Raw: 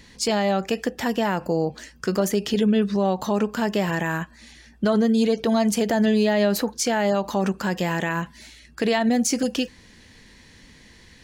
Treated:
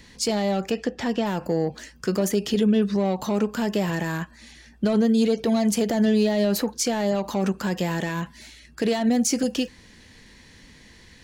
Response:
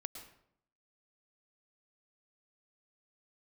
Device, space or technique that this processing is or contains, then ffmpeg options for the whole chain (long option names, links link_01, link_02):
one-band saturation: -filter_complex "[0:a]acrossover=split=560|3800[link_01][link_02][link_03];[link_02]asoftclip=type=tanh:threshold=-29dB[link_04];[link_01][link_04][link_03]amix=inputs=3:normalize=0,asplit=3[link_05][link_06][link_07];[link_05]afade=type=out:start_time=0.7:duration=0.02[link_08];[link_06]lowpass=5800,afade=type=in:start_time=0.7:duration=0.02,afade=type=out:start_time=1.25:duration=0.02[link_09];[link_07]afade=type=in:start_time=1.25:duration=0.02[link_10];[link_08][link_09][link_10]amix=inputs=3:normalize=0"